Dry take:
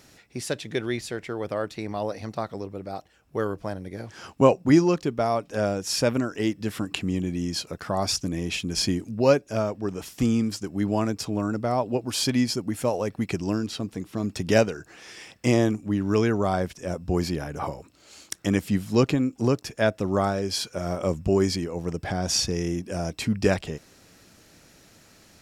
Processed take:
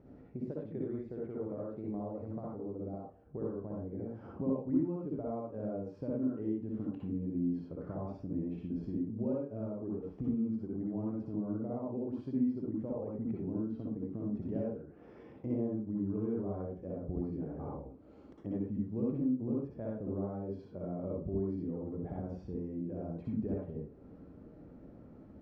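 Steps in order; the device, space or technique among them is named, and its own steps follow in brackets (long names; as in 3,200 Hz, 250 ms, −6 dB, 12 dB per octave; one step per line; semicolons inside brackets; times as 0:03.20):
television next door (downward compressor 3 to 1, threshold −42 dBFS, peak gain reduction 22 dB; low-pass filter 480 Hz 12 dB per octave; convolution reverb RT60 0.40 s, pre-delay 54 ms, DRR −3.5 dB)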